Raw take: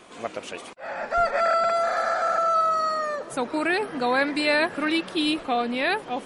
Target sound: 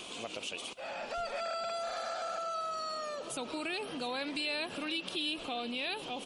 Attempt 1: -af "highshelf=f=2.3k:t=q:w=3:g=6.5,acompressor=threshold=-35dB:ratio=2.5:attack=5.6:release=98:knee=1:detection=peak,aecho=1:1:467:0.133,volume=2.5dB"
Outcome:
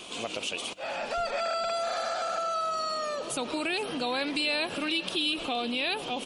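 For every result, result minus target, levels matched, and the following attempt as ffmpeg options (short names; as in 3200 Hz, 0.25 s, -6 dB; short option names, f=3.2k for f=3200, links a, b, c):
echo 0.244 s early; compressor: peak gain reduction -6.5 dB
-af "highshelf=f=2.3k:t=q:w=3:g=6.5,acompressor=threshold=-35dB:ratio=2.5:attack=5.6:release=98:knee=1:detection=peak,aecho=1:1:711:0.133,volume=2.5dB"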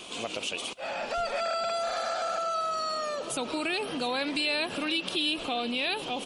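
compressor: peak gain reduction -6.5 dB
-af "highshelf=f=2.3k:t=q:w=3:g=6.5,acompressor=threshold=-46dB:ratio=2.5:attack=5.6:release=98:knee=1:detection=peak,aecho=1:1:711:0.133,volume=2.5dB"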